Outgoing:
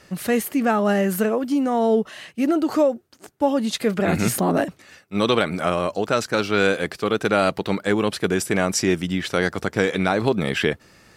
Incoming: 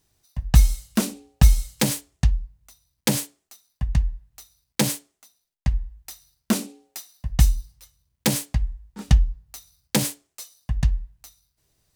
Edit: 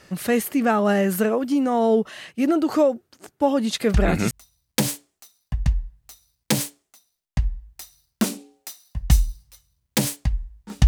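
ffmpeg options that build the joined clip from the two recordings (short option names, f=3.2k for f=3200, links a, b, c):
-filter_complex "[0:a]apad=whole_dur=10.87,atrim=end=10.87,atrim=end=4.31,asetpts=PTS-STARTPTS[a];[1:a]atrim=start=2.18:end=9.16,asetpts=PTS-STARTPTS[b];[a][b]acrossfade=d=0.42:c1=log:c2=log"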